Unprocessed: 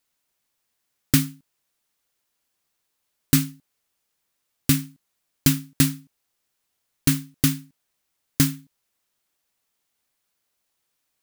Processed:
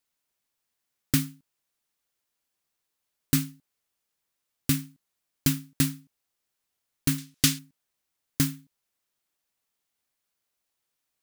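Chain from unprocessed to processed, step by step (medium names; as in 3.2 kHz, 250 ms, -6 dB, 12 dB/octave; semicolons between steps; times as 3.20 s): 7.18–7.59 s: peaking EQ 4.6 kHz +11 dB 3 oct; trim -5.5 dB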